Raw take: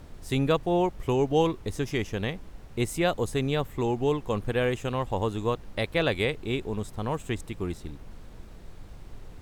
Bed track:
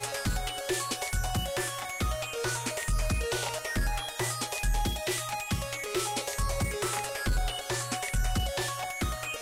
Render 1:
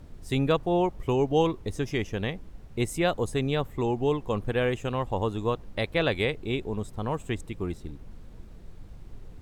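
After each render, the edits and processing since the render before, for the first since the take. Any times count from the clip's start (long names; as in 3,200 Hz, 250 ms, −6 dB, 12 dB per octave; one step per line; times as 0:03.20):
broadband denoise 6 dB, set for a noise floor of −47 dBFS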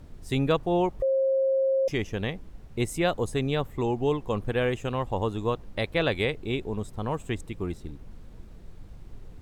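0:01.02–0:01.88: beep over 535 Hz −20.5 dBFS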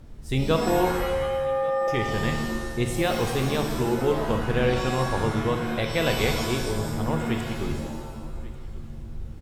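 single-tap delay 1,140 ms −21 dB
reverb with rising layers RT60 1.2 s, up +7 semitones, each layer −2 dB, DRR 4 dB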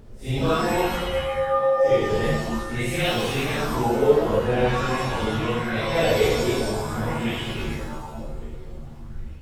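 random phases in long frames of 200 ms
auto-filter bell 0.47 Hz 430–3,100 Hz +9 dB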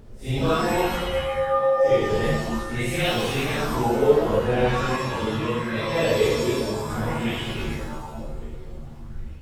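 0:04.96–0:06.90: notch comb filter 730 Hz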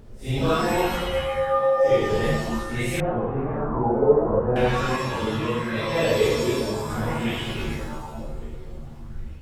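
0:03.00–0:04.56: low-pass filter 1,200 Hz 24 dB per octave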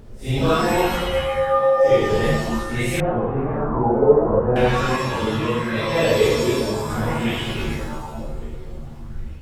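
level +3.5 dB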